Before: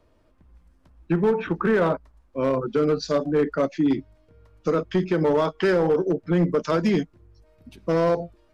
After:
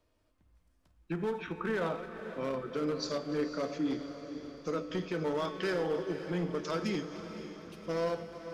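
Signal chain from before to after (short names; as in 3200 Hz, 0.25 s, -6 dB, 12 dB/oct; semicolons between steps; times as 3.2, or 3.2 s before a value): regenerating reverse delay 0.147 s, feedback 45%, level -13 dB; high shelf 2300 Hz +10 dB; resonator 100 Hz, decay 1.1 s, harmonics odd, mix 70%; on a send: diffused feedback echo 0.52 s, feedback 57%, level -11 dB; on the sum: gain -3.5 dB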